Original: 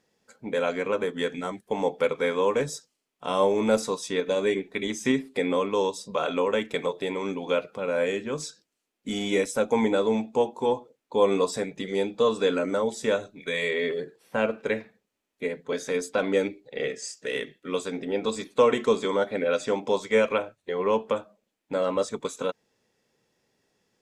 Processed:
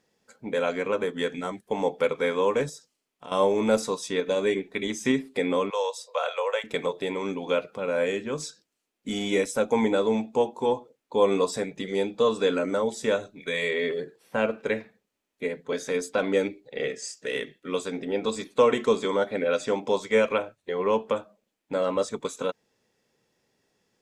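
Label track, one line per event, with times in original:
2.690000	3.320000	compressor 2.5:1, threshold -42 dBFS
5.700000	6.640000	Chebyshev high-pass 480 Hz, order 6

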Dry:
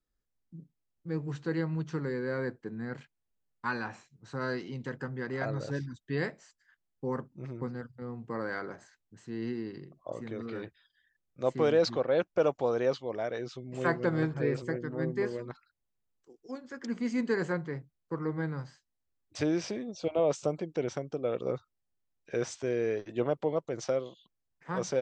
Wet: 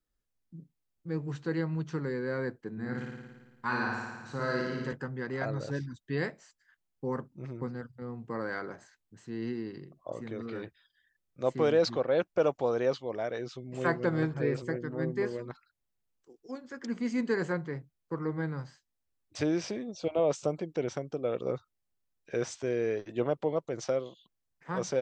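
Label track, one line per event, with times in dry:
2.720000	4.930000	flutter echo walls apart 9.6 m, dies away in 1.3 s

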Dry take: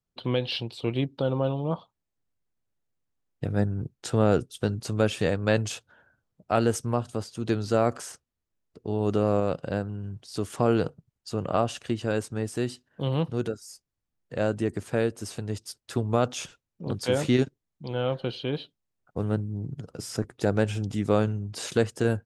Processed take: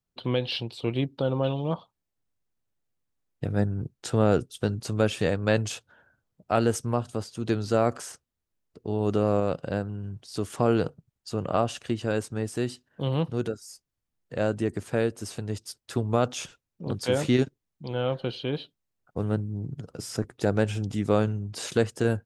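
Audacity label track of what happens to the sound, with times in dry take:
1.430000	1.730000	spectral gain 1500–7200 Hz +7 dB

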